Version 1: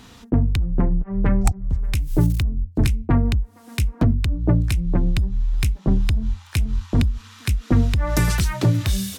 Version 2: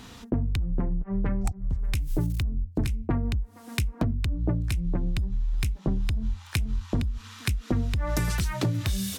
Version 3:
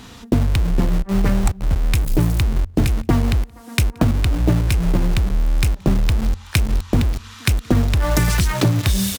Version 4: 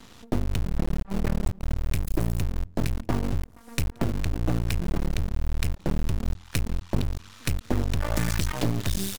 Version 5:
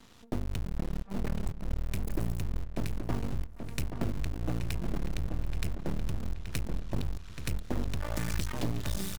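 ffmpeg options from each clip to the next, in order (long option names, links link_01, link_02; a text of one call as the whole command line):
ffmpeg -i in.wav -af "acompressor=threshold=-24dB:ratio=4" out.wav
ffmpeg -i in.wav -filter_complex "[0:a]asplit=2[link_01][link_02];[link_02]acrusher=bits=4:mix=0:aa=0.000001,volume=-4.5dB[link_03];[link_01][link_03]amix=inputs=2:normalize=0,asplit=2[link_04][link_05];[link_05]adelay=174.9,volume=-28dB,highshelf=frequency=4000:gain=-3.94[link_06];[link_04][link_06]amix=inputs=2:normalize=0,volume=5.5dB" out.wav
ffmpeg -i in.wav -af "aeval=exprs='max(val(0),0)':channel_layout=same,volume=-5.5dB" out.wav
ffmpeg -i in.wav -filter_complex "[0:a]asplit=2[link_01][link_02];[link_02]adelay=828,lowpass=frequency=3500:poles=1,volume=-7.5dB,asplit=2[link_03][link_04];[link_04]adelay=828,lowpass=frequency=3500:poles=1,volume=0.4,asplit=2[link_05][link_06];[link_06]adelay=828,lowpass=frequency=3500:poles=1,volume=0.4,asplit=2[link_07][link_08];[link_08]adelay=828,lowpass=frequency=3500:poles=1,volume=0.4,asplit=2[link_09][link_10];[link_10]adelay=828,lowpass=frequency=3500:poles=1,volume=0.4[link_11];[link_01][link_03][link_05][link_07][link_09][link_11]amix=inputs=6:normalize=0,volume=-7.5dB" out.wav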